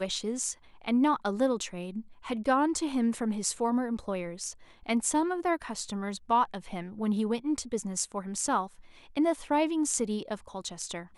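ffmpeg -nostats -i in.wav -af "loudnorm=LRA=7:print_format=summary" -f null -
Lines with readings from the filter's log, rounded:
Input Integrated:    -30.4 LUFS
Input True Peak:     -12.0 dBTP
Input LRA:             1.5 LU
Input Threshold:     -40.6 LUFS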